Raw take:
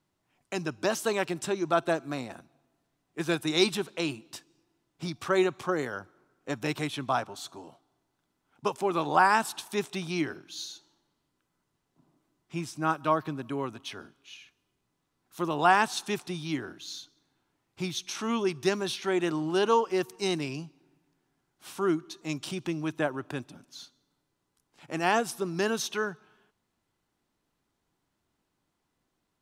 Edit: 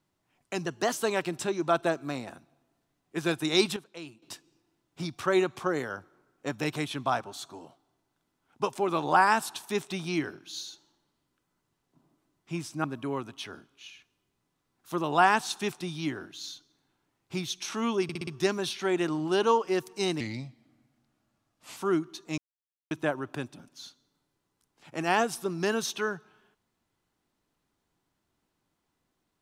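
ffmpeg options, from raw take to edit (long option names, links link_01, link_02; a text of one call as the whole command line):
ffmpeg -i in.wav -filter_complex "[0:a]asplit=14[link_01][link_02][link_03][link_04][link_05][link_06][link_07][link_08][link_09][link_10][link_11][link_12][link_13][link_14];[link_01]atrim=end=0.664[link_15];[link_02]atrim=start=0.66:end=0.96,asetpts=PTS-STARTPTS,asetrate=48510,aresample=44100,atrim=end_sample=12027,asetpts=PTS-STARTPTS[link_16];[link_03]atrim=start=0.956:end=3.792[link_17];[link_04]atrim=start=3.788:end=4.252,asetpts=PTS-STARTPTS,volume=-12dB[link_18];[link_05]atrim=start=4.248:end=12.872[link_19];[link_06]atrim=start=13.308:end=18.562[link_20];[link_07]atrim=start=18.498:end=18.562[link_21];[link_08]atrim=start=18.498:end=18.562[link_22];[link_09]atrim=start=18.498:end=18.562[link_23];[link_10]atrim=start=18.498:end=20.434[link_24];[link_11]atrim=start=20.43:end=21.73,asetpts=PTS-STARTPTS,asetrate=36603,aresample=44100,atrim=end_sample=69072,asetpts=PTS-STARTPTS[link_25];[link_12]atrim=start=21.726:end=22.34,asetpts=PTS-STARTPTS,afade=type=out:start_time=0.61:duration=0.004:curve=hsin[link_26];[link_13]atrim=start=22.34:end=22.87,asetpts=PTS-STARTPTS,volume=0[link_27];[link_14]atrim=start=22.87,asetpts=PTS-STARTPTS,afade=type=in:duration=0.004:curve=hsin[link_28];[link_15][link_16]acrossfade=duration=0.004:curve1=hsin:curve2=hsin[link_29];[link_29][link_17]acrossfade=duration=0.004:curve1=hsin:curve2=hsin[link_30];[link_30][link_18]acrossfade=duration=0.004:curve1=hsin:curve2=hsin[link_31];[link_31][link_19]acrossfade=duration=0.004:curve1=hsin:curve2=hsin[link_32];[link_32][link_20]acrossfade=duration=0.004:curve1=hsin:curve2=hsin[link_33];[link_33][link_21]acrossfade=duration=0.004:curve1=hsin:curve2=hsin[link_34];[link_34][link_22]acrossfade=duration=0.004:curve1=hsin:curve2=hsin[link_35];[link_35][link_23]acrossfade=duration=0.004:curve1=hsin:curve2=hsin[link_36];[link_36][link_24]acrossfade=duration=0.004:curve1=hsin:curve2=hsin[link_37];[link_37][link_25]acrossfade=duration=0.004:curve1=hsin:curve2=hsin[link_38];[link_26][link_27][link_28]concat=n=3:v=0:a=1[link_39];[link_38][link_39]acrossfade=duration=0.004:curve1=hsin:curve2=hsin" out.wav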